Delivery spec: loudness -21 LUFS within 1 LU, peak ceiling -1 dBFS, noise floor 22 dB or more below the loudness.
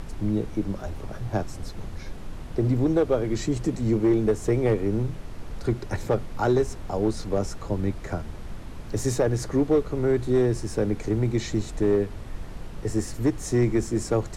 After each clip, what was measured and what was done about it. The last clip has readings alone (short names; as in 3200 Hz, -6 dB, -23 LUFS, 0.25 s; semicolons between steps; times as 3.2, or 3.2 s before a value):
clipped 0.7%; flat tops at -14.0 dBFS; noise floor -38 dBFS; noise floor target -48 dBFS; loudness -26.0 LUFS; peak -14.0 dBFS; loudness target -21.0 LUFS
-> clip repair -14 dBFS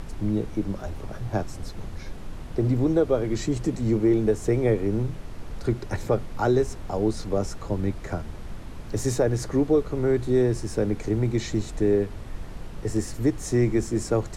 clipped 0.0%; noise floor -38 dBFS; noise floor target -48 dBFS
-> noise print and reduce 10 dB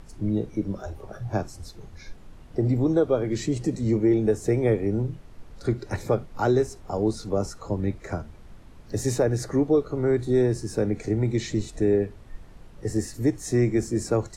noise floor -46 dBFS; noise floor target -48 dBFS
-> noise print and reduce 6 dB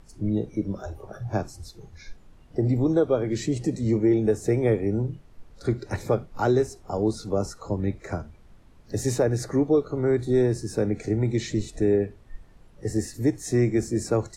noise floor -51 dBFS; loudness -25.5 LUFS; peak -10.5 dBFS; loudness target -21.0 LUFS
-> gain +4.5 dB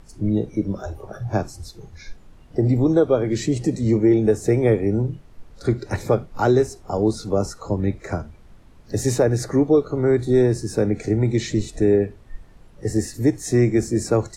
loudness -21.0 LUFS; peak -6.0 dBFS; noise floor -47 dBFS